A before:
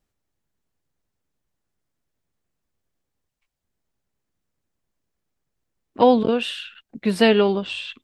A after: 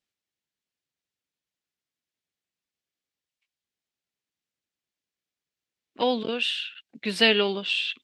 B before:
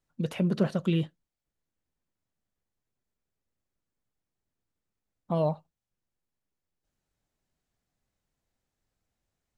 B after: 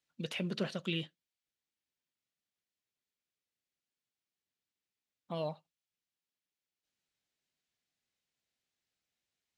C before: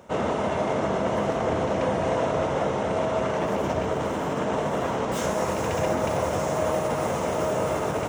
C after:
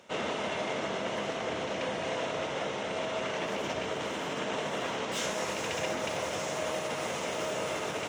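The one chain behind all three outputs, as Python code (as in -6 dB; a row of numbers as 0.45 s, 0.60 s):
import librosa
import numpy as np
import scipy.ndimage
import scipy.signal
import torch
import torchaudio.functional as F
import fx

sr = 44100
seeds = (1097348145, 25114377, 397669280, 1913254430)

y = fx.rider(x, sr, range_db=3, speed_s=2.0)
y = fx.weighting(y, sr, curve='D')
y = y * 10.0 ** (-8.5 / 20.0)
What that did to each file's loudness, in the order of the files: -4.5 LU, -9.0 LU, -7.5 LU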